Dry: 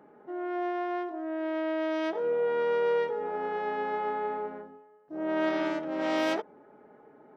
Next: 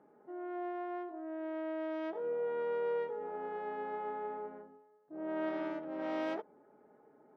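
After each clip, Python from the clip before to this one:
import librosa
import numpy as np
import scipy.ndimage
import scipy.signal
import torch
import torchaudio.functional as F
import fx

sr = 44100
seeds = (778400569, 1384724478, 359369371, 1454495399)

y = fx.lowpass(x, sr, hz=1400.0, slope=6)
y = fx.low_shelf(y, sr, hz=140.0, db=-4.0)
y = y * 10.0 ** (-7.0 / 20.0)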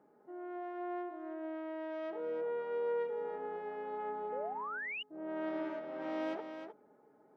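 y = x + 10.0 ** (-7.5 / 20.0) * np.pad(x, (int(308 * sr / 1000.0), 0))[:len(x)]
y = fx.spec_paint(y, sr, seeds[0], shape='rise', start_s=4.32, length_s=0.71, low_hz=470.0, high_hz=3000.0, level_db=-38.0)
y = y * 10.0 ** (-2.5 / 20.0)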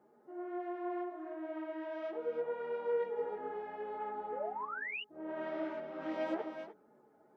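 y = fx.chorus_voices(x, sr, voices=6, hz=1.3, base_ms=11, depth_ms=3.0, mix_pct=45)
y = y * 10.0 ** (3.0 / 20.0)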